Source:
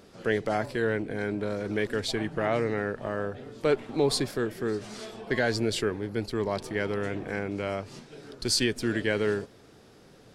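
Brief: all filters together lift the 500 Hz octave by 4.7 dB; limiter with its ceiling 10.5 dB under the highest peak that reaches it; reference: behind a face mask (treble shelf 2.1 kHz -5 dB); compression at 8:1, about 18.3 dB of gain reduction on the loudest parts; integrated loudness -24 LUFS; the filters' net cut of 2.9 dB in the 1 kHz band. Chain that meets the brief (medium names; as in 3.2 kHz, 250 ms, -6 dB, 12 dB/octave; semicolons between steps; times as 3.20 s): peaking EQ 500 Hz +7.5 dB; peaking EQ 1 kHz -7.5 dB; compression 8:1, threshold -35 dBFS; peak limiter -32.5 dBFS; treble shelf 2.1 kHz -5 dB; trim +18.5 dB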